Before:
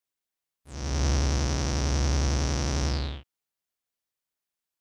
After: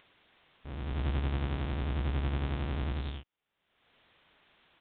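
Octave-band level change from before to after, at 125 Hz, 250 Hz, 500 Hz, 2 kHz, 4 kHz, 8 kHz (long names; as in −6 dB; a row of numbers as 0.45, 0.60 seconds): −6.0 dB, −5.5 dB, −7.5 dB, −6.0 dB, −12.0 dB, below −40 dB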